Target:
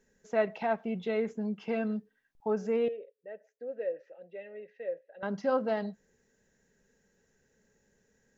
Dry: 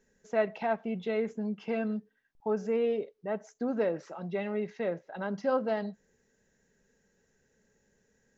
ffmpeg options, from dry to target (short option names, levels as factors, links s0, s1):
-filter_complex "[0:a]asettb=1/sr,asplit=3[s0][s1][s2];[s0]atrim=end=2.884[s3];[s1]atrim=start=2.88:end=5.23,asetpts=PTS-STARTPTS,afade=t=in:d=0.004:c=qsin,afade=t=out:st=2.346:d=0.004:c=qsin,asplit=3[s4][s5][s6];[s4]bandpass=f=530:t=q:w=8,volume=1[s7];[s5]bandpass=f=1840:t=q:w=8,volume=0.501[s8];[s6]bandpass=f=2480:t=q:w=8,volume=0.355[s9];[s7][s8][s9]amix=inputs=3:normalize=0[s10];[s2]atrim=start=5.226[s11];[s3][s10]acrossfade=d=0.004:c1=hsin:c2=qsin[s12];[s12][s11]acrossfade=d=0.004:c1=qsin:c2=hsin"